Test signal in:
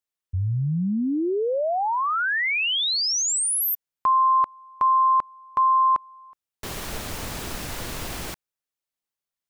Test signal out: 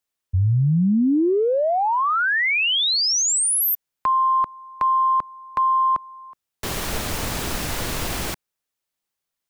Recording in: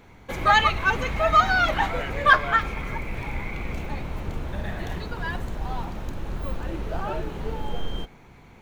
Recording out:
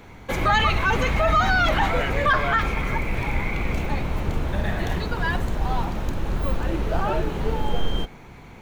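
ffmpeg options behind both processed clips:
-filter_complex "[0:a]acrossover=split=290[s0][s1];[s1]acompressor=threshold=0.0562:ratio=3:attack=0.93:release=26:knee=2.83:detection=peak[s2];[s0][s2]amix=inputs=2:normalize=0,volume=2"

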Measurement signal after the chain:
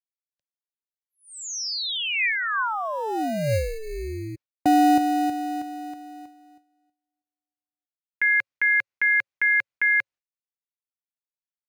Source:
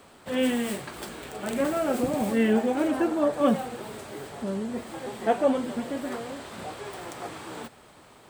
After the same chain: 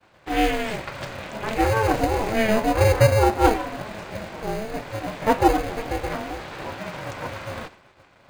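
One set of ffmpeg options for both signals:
-filter_complex "[0:a]highpass=120,equalizer=f=220:t=q:w=4:g=-6,equalizer=f=330:t=q:w=4:g=9,equalizer=f=530:t=q:w=4:g=4,equalizer=f=1300:t=q:w=4:g=5,equalizer=f=2200:t=q:w=4:g=7,lowpass=f=6300:w=0.5412,lowpass=f=6300:w=1.3066,acrossover=split=410|520|2900[s0][s1][s2][s3];[s0]acrusher=samples=20:mix=1:aa=0.000001[s4];[s4][s1][s2][s3]amix=inputs=4:normalize=0,aeval=exprs='val(0)*sin(2*PI*220*n/s)':c=same,agate=range=0.0224:threshold=0.00501:ratio=3:detection=peak,volume=1.88"

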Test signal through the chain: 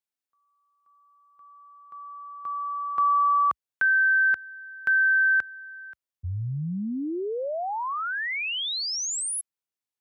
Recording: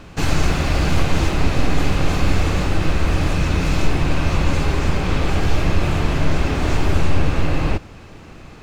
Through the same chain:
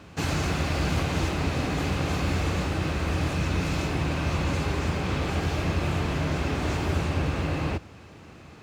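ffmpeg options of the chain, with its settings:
-af "highpass=f=61:w=0.5412,highpass=f=61:w=1.3066,volume=0.501"

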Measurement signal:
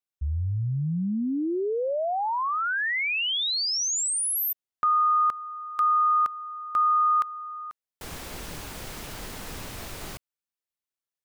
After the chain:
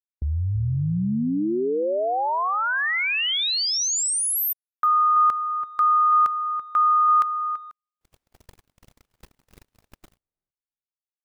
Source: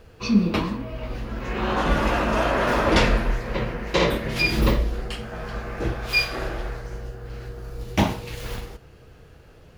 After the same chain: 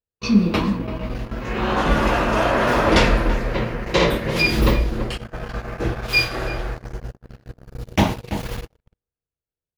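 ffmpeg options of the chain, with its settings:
-filter_complex "[0:a]asplit=2[s0][s1];[s1]adelay=334,lowpass=f=1100:p=1,volume=0.355,asplit=2[s2][s3];[s3]adelay=334,lowpass=f=1100:p=1,volume=0.16[s4];[s0][s2][s4]amix=inputs=3:normalize=0,agate=range=0.00316:threshold=0.0158:ratio=16:release=25:detection=peak,volume=1.41"

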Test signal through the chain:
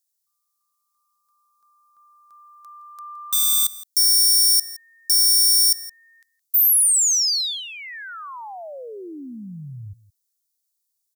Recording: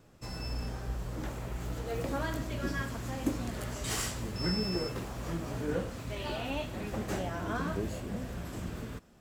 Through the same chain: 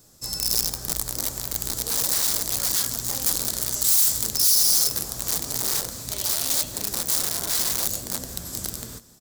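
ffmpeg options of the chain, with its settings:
-af "aeval=exprs='(mod(31.6*val(0)+1,2)-1)/31.6':c=same,aexciter=amount=3.4:drive=9.6:freq=3900,aecho=1:1:167:0.119"

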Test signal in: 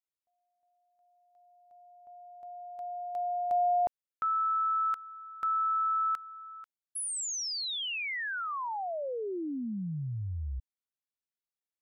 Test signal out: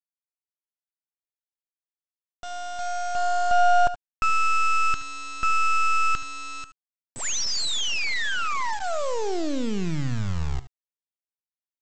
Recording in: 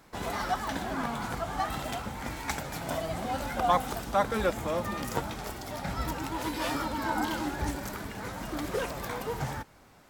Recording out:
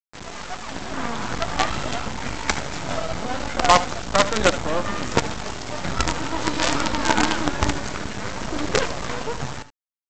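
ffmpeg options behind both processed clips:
-af "bandreject=f=800:w=12,dynaudnorm=f=180:g=11:m=3.98,aresample=16000,acrusher=bits=3:dc=4:mix=0:aa=0.000001,aresample=44100,aecho=1:1:72|79:0.168|0.112"

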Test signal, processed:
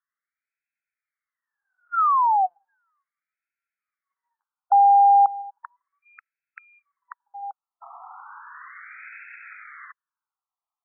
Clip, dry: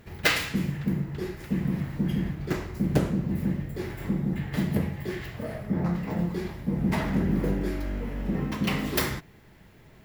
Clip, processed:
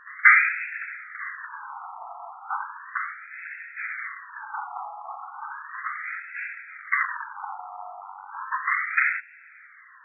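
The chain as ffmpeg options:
-af "asubboost=boost=10:cutoff=73,aeval=exprs='0.531*sin(PI/2*2.82*val(0)/0.531)':c=same,afftfilt=real='re*between(b*sr/1024,950*pow(1900/950,0.5+0.5*sin(2*PI*0.35*pts/sr))/1.41,950*pow(1900/950,0.5+0.5*sin(2*PI*0.35*pts/sr))*1.41)':imag='im*between(b*sr/1024,950*pow(1900/950,0.5+0.5*sin(2*PI*0.35*pts/sr))/1.41,950*pow(1900/950,0.5+0.5*sin(2*PI*0.35*pts/sr))*1.41)':win_size=1024:overlap=0.75,volume=1.26"

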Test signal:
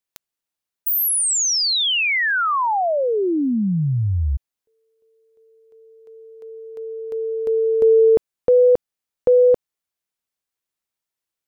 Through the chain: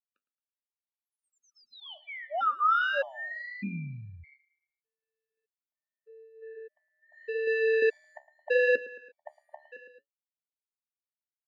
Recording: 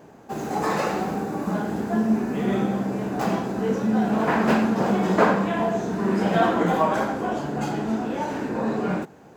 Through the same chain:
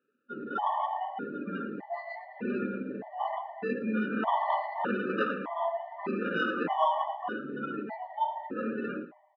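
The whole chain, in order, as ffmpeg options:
-filter_complex "[0:a]acrossover=split=1500[s0][s1];[s0]acrusher=samples=20:mix=1:aa=0.000001[s2];[s1]acompressor=threshold=0.0178:ratio=6:attack=31:release=539[s3];[s2][s3]amix=inputs=2:normalize=0,afftdn=nr=24:nf=-29,lowshelf=f=290:g=-9.5,asplit=2[s4][s5];[s5]aecho=0:1:110|220|330|440:0.141|0.0692|0.0339|0.0166[s6];[s4][s6]amix=inputs=2:normalize=0,flanger=delay=7.9:depth=6.8:regen=-65:speed=0.79:shape=sinusoidal,alimiter=limit=0.168:level=0:latency=1:release=484,highpass=210,equalizer=f=250:t=q:w=4:g=7,equalizer=f=910:t=q:w=4:g=9,equalizer=f=1300:t=q:w=4:g=8,lowpass=f=2900:w=0.5412,lowpass=f=2900:w=1.3066,afftfilt=real='re*gt(sin(2*PI*0.82*pts/sr)*(1-2*mod(floor(b*sr/1024/590),2)),0)':imag='im*gt(sin(2*PI*0.82*pts/sr)*(1-2*mod(floor(b*sr/1024/590),2)),0)':win_size=1024:overlap=0.75"

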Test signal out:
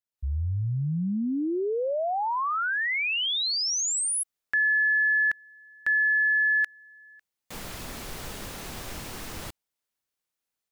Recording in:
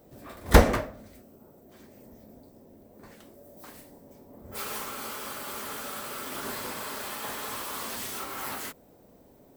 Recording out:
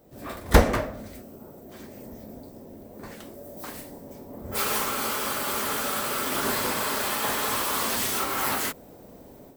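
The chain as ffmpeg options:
-af "dynaudnorm=f=120:g=3:m=3.16,volume=0.891"

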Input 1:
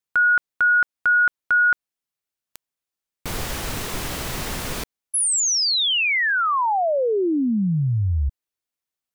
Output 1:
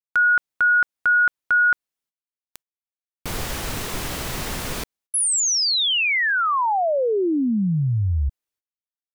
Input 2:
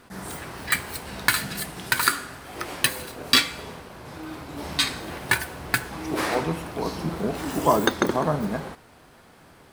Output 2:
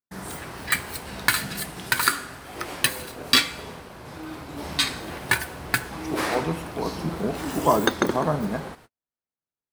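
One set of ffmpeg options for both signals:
-af "agate=range=0.00355:threshold=0.01:ratio=16:release=258:detection=rms"

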